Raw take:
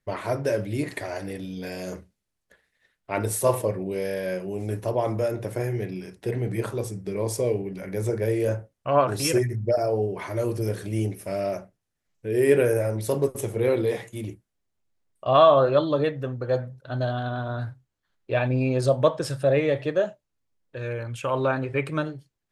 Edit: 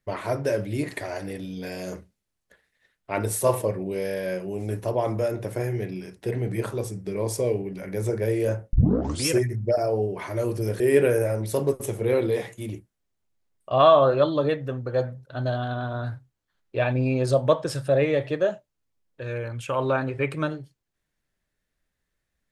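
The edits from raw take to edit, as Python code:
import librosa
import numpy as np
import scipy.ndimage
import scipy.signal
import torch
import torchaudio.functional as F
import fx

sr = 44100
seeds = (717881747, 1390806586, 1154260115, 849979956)

y = fx.edit(x, sr, fx.tape_start(start_s=8.73, length_s=0.53),
    fx.cut(start_s=10.8, length_s=1.55), tone=tone)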